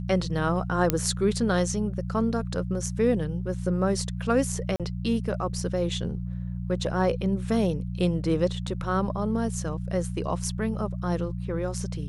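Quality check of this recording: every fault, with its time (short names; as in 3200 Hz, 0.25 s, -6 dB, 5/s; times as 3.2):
hum 60 Hz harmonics 3 -32 dBFS
0.9 pop -6 dBFS
4.76–4.8 gap 37 ms
8.67–8.68 gap 5.9 ms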